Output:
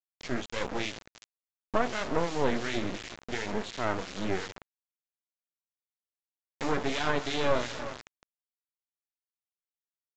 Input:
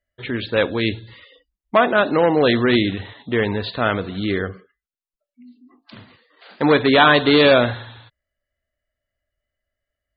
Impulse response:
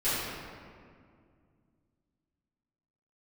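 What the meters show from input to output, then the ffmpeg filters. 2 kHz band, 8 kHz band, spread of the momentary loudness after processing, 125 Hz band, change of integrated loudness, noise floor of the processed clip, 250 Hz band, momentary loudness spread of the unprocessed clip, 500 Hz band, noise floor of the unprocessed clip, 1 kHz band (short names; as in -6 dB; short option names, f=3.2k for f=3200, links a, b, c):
-15.0 dB, n/a, 11 LU, -13.5 dB, -14.5 dB, under -85 dBFS, -15.0 dB, 14 LU, -14.5 dB, under -85 dBFS, -13.0 dB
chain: -filter_complex "[0:a]asplit=2[a][b];[b]aecho=0:1:189:0.112[c];[a][c]amix=inputs=2:normalize=0,adynamicequalizer=threshold=0.0224:dfrequency=1100:dqfactor=3.3:tfrequency=1100:tqfactor=3.3:attack=5:release=100:ratio=0.375:range=2.5:mode=cutabove:tftype=bell,flanger=delay=4.5:depth=8.5:regen=-36:speed=1.4:shape=sinusoidal,asplit=2[d][e];[e]aecho=0:1:354|708|1062:0.0944|0.0378|0.0151[f];[d][f]amix=inputs=2:normalize=0,alimiter=limit=-14dB:level=0:latency=1:release=262,highpass=170,lowpass=4.2k,highshelf=f=3.2k:g=-5.5,acrusher=bits=3:dc=4:mix=0:aa=0.000001,acrossover=split=1900[g][h];[g]aeval=exprs='val(0)*(1-0.7/2+0.7/2*cos(2*PI*2.8*n/s))':c=same[i];[h]aeval=exprs='val(0)*(1-0.7/2-0.7/2*cos(2*PI*2.8*n/s))':c=same[j];[i][j]amix=inputs=2:normalize=0,volume=2dB" -ar 16000 -c:a pcm_mulaw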